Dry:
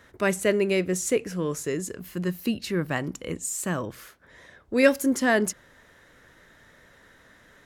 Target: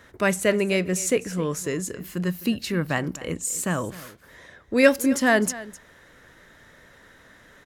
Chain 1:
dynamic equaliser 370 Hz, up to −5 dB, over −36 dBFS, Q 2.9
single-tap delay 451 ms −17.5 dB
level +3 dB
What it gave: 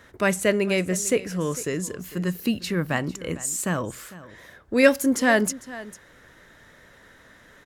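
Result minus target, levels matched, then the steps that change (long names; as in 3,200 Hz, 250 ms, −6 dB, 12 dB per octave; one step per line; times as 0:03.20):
echo 193 ms late
change: single-tap delay 258 ms −17.5 dB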